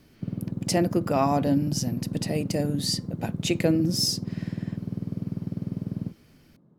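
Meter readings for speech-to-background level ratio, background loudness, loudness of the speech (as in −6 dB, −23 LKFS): 6.5 dB, −33.0 LKFS, −26.5 LKFS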